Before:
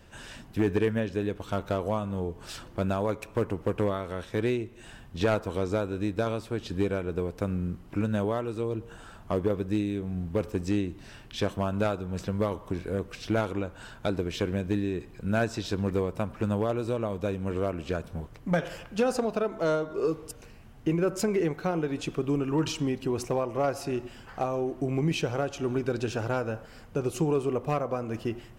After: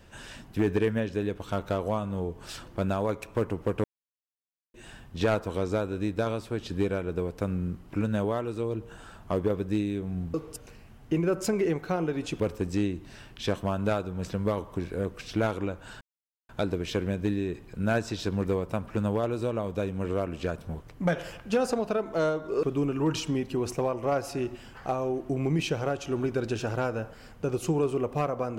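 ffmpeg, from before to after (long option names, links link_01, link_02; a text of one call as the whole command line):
ffmpeg -i in.wav -filter_complex "[0:a]asplit=7[link_01][link_02][link_03][link_04][link_05][link_06][link_07];[link_01]atrim=end=3.84,asetpts=PTS-STARTPTS,afade=type=out:start_time=3.836:duration=0.004:curve=hsin[link_08];[link_02]atrim=start=3.84:end=4.74,asetpts=PTS-STARTPTS,volume=0[link_09];[link_03]atrim=start=4.74:end=10.342,asetpts=PTS-STARTPTS,afade=type=in:duration=0.004:curve=hsin[link_10];[link_04]atrim=start=20.088:end=22.152[link_11];[link_05]atrim=start=10.338:end=13.95,asetpts=PTS-STARTPTS,afade=type=out:start_time=3.608:duration=0.004:curve=hsin,apad=pad_dur=0.48[link_12];[link_06]atrim=start=13.95:end=20.092,asetpts=PTS-STARTPTS,afade=type=in:duration=0.004:curve=hsin[link_13];[link_07]atrim=start=22.148[link_14];[link_08][link_09][link_10]concat=n=3:v=0:a=1[link_15];[link_15][link_11]acrossfade=duration=0.004:curve1=hsin:curve2=hsin[link_16];[link_12][link_13]concat=n=2:v=0:a=1[link_17];[link_16][link_17]acrossfade=duration=0.004:curve1=hsin:curve2=hsin[link_18];[link_18][link_14]acrossfade=duration=0.004:curve1=hsin:curve2=hsin" out.wav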